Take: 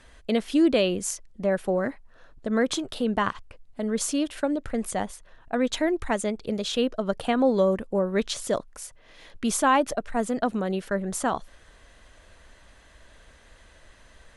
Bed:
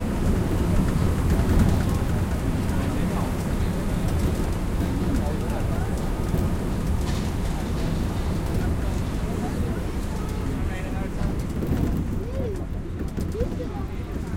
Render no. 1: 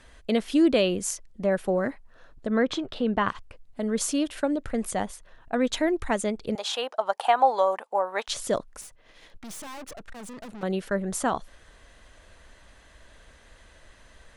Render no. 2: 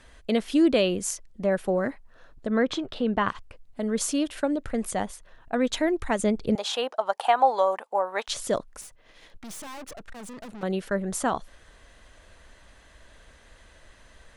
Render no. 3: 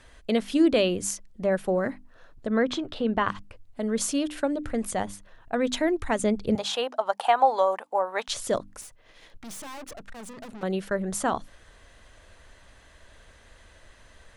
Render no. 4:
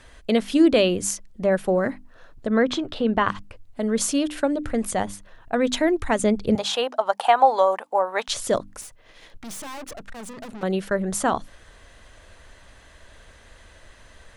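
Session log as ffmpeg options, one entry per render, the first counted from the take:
-filter_complex "[0:a]asettb=1/sr,asplit=3[a][b][c];[a]atrim=end=2.474[d];[b]atrim=start=2.47:end=3.28,asetpts=PTS-STARTPTS,afade=t=in:d=0.004:c=qsin,afade=t=out:st=0.806:d=0.004:c=qsin,lowpass=3.8k[e];[c]atrim=start=3.276[f];[d][e]acrossfade=d=0.004:c1=hsin:c2=qsin[g];[g][f]acrossfade=d=0.004:c1=qsin:c2=hsin,asettb=1/sr,asplit=3[h][i][j];[h]atrim=end=6.554[k];[i]atrim=start=6.55:end=8.28,asetpts=PTS-STARTPTS,afade=t=in:d=0.004:c=qsin,afade=t=out:st=1.726:d=0.004:c=qsin,highpass=f=830:t=q:w=4.8[l];[j]atrim=start=8.276[m];[k][l]acrossfade=d=0.004:c1=hsin:c2=qsin[n];[n][m]acrossfade=d=0.004:c1=qsin:c2=hsin,asettb=1/sr,asplit=3[o][p][q];[o]atrim=end=8.814[r];[p]atrim=start=8.81:end=10.63,asetpts=PTS-STARTPTS,afade=t=in:d=0.004:c=qsin,afade=t=out:st=1.816:d=0.004:c=qsin,aeval=exprs='(tanh(89.1*val(0)+0.6)-tanh(0.6))/89.1':c=same[s];[q]atrim=start=10.626[t];[r][s]acrossfade=d=0.004:c1=hsin:c2=qsin[u];[u][t]acrossfade=d=0.004:c1=qsin:c2=hsin"
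-filter_complex "[0:a]asettb=1/sr,asplit=3[a][b][c];[a]atrim=end=6.194[d];[b]atrim=start=6.19:end=6.94,asetpts=PTS-STARTPTS,afade=t=in:d=0.004:c=qsin,afade=t=out:st=0.746:d=0.004:c=qsin,lowshelf=f=390:g=7.5[e];[c]atrim=start=6.936[f];[d][e]acrossfade=d=0.004:c1=hsin:c2=qsin[g];[g][f]acrossfade=d=0.004:c1=qsin:c2=hsin"
-af "equalizer=f=100:w=5.2:g=7.5,bandreject=f=50:t=h:w=6,bandreject=f=100:t=h:w=6,bandreject=f=150:t=h:w=6,bandreject=f=200:t=h:w=6,bandreject=f=250:t=h:w=6,bandreject=f=300:t=h:w=6"
-af "volume=4dB"

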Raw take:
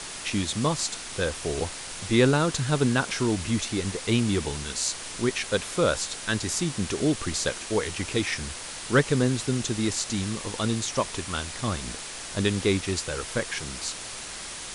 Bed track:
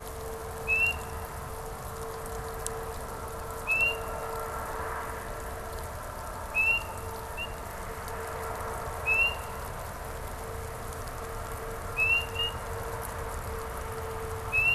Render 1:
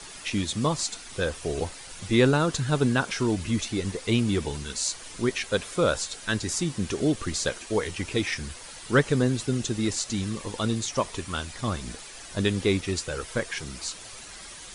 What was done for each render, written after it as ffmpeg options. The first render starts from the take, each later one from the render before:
-af "afftdn=nr=9:nf=-38"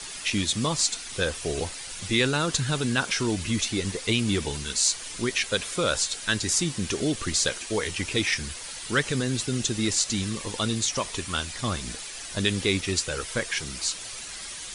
-filter_complex "[0:a]acrossover=split=1800[a][b];[a]alimiter=limit=-18.5dB:level=0:latency=1[c];[b]acontrast=47[d];[c][d]amix=inputs=2:normalize=0"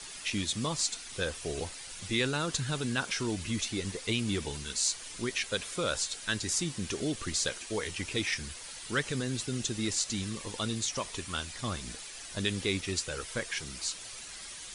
-af "volume=-6.5dB"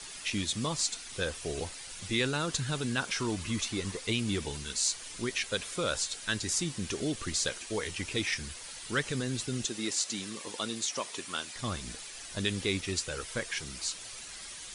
-filter_complex "[0:a]asettb=1/sr,asplit=3[a][b][c];[a]atrim=end=3.154[d];[b]atrim=start=3.15:end=3.99,asetpts=PTS-STARTPTS,afade=t=in:d=0.004:c=qsin,afade=t=out:st=0.836:d=0.004:c=qsin,equalizer=f=1.1k:w=2.6:g=6.5[e];[c]atrim=start=3.986[f];[d][e]acrossfade=d=0.004:c1=hsin:c2=qsin[g];[g][f]acrossfade=d=0.004:c1=qsin:c2=hsin,asettb=1/sr,asplit=3[h][i][j];[h]atrim=end=9.654[k];[i]atrim=start=9.65:end=11.56,asetpts=PTS-STARTPTS,afade=t=in:d=0.004:c=qsin,afade=t=out:st=1.906:d=0.004:c=qsin,highpass=240[l];[j]atrim=start=11.556[m];[k][l]acrossfade=d=0.004:c1=hsin:c2=qsin[n];[n][m]acrossfade=d=0.004:c1=qsin:c2=hsin"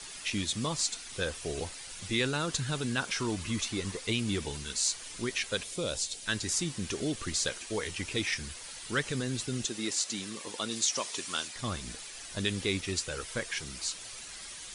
-filter_complex "[0:a]asettb=1/sr,asplit=3[a][b][c];[a]atrim=end=5.634[d];[b]atrim=start=5.63:end=6.26,asetpts=PTS-STARTPTS,afade=t=in:d=0.004:c=qsin,afade=t=out:st=0.626:d=0.004:c=qsin,equalizer=f=1.4k:w=1.2:g=-11[e];[c]atrim=start=6.256[f];[d][e]acrossfade=d=0.004:c1=hsin:c2=qsin[g];[g][f]acrossfade=d=0.004:c1=qsin:c2=hsin,asettb=1/sr,asplit=3[h][i][j];[h]atrim=end=10.714[k];[i]atrim=start=10.71:end=11.48,asetpts=PTS-STARTPTS,afade=t=in:d=0.004:c=qsin,afade=t=out:st=0.766:d=0.004:c=qsin,equalizer=f=5.9k:w=0.75:g=5.5[l];[j]atrim=start=11.476[m];[k][l]acrossfade=d=0.004:c1=hsin:c2=qsin[n];[n][m]acrossfade=d=0.004:c1=qsin:c2=hsin"

